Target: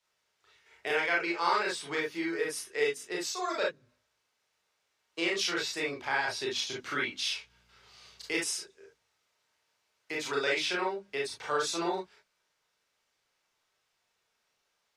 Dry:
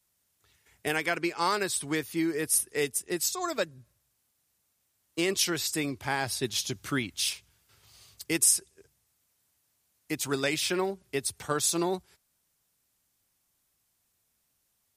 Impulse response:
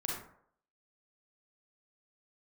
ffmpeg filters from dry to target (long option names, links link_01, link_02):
-filter_complex "[0:a]asettb=1/sr,asplit=3[link_01][link_02][link_03];[link_01]atrim=end=7.234[link_04];[link_02]atrim=start=7.23:end=8.46,asetpts=PTS-STARTPTS,afade=type=in:duration=0.004:curve=qsin,afade=type=out:start_time=1.226:duration=0.004:curve=qsin,aeval=exprs='val(0)+0.00112*(sin(2*PI*60*n/s)+sin(2*PI*2*60*n/s)/2+sin(2*PI*3*60*n/s)/3+sin(2*PI*4*60*n/s)/4+sin(2*PI*5*60*n/s)/5)':channel_layout=same[link_05];[link_03]atrim=start=8.456[link_06];[link_04][link_05]acrossfade=duration=0.004:curve1=hsin:curve2=qsin[link_07];[link_07][link_06]acrossfade=duration=0.004:curve1=qsin:curve2=hsin,acrossover=split=400 5700:gain=0.178 1 0.0708[link_08][link_09][link_10];[link_08][link_09][link_10]amix=inputs=3:normalize=0,bandreject=frequency=50:width_type=h:width=6,bandreject=frequency=100:width_type=h:width=6,bandreject=frequency=150:width_type=h:width=6,bandreject=frequency=200:width_type=h:width=6,bandreject=frequency=250:width_type=h:width=6,bandreject=frequency=300:width_type=h:width=6[link_11];[1:a]atrim=start_sample=2205,atrim=end_sample=4410,asetrate=57330,aresample=44100[link_12];[link_11][link_12]afir=irnorm=-1:irlink=0,asplit=2[link_13][link_14];[link_14]acompressor=threshold=-44dB:ratio=6,volume=-1dB[link_15];[link_13][link_15]amix=inputs=2:normalize=0"